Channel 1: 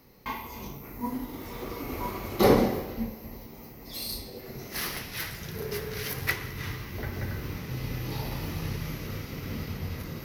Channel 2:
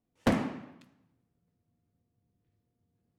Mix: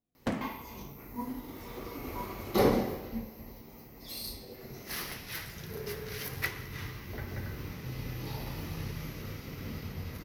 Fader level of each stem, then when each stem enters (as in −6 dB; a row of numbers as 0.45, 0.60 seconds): −5.0, −6.5 decibels; 0.15, 0.00 seconds